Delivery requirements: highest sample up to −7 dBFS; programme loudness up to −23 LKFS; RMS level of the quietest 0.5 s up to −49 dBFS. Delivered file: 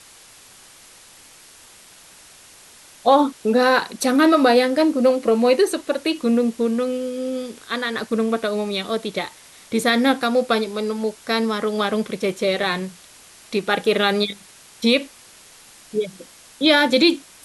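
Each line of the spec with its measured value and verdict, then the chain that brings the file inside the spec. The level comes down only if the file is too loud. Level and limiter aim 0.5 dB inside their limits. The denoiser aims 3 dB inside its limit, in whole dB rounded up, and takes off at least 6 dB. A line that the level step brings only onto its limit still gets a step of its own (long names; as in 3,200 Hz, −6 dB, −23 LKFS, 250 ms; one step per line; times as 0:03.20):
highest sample −3.0 dBFS: out of spec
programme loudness −20.0 LKFS: out of spec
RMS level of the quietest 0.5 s −47 dBFS: out of spec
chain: level −3.5 dB
brickwall limiter −7.5 dBFS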